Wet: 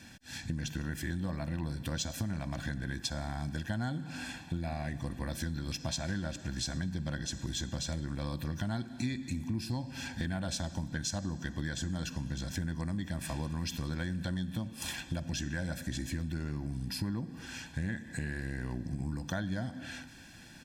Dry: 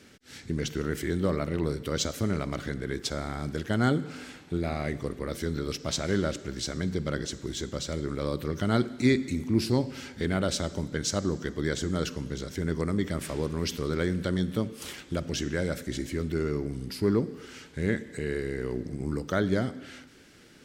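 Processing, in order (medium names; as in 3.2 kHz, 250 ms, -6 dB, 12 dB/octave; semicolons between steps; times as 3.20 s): band-stop 580 Hz, Q 12; comb 1.2 ms, depth 99%; compression 6:1, threshold -32 dBFS, peak gain reduction 15.5 dB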